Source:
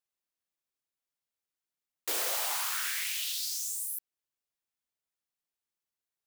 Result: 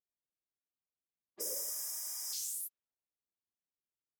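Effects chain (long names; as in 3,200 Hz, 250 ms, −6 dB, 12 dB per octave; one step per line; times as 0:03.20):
time stretch by phase vocoder 0.67×
low-pass that shuts in the quiet parts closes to 530 Hz, open at −35.5 dBFS
healed spectral selection 0:01.41–0:02.30, 620–4,900 Hz before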